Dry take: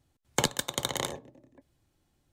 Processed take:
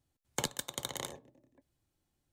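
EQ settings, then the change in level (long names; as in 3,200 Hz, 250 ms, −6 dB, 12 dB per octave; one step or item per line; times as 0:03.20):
high-shelf EQ 6,600 Hz +5 dB
−9.0 dB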